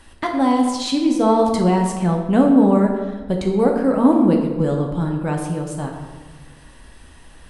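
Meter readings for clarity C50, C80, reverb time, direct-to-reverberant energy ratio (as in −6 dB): 4.5 dB, 6.5 dB, 1.4 s, 1.0 dB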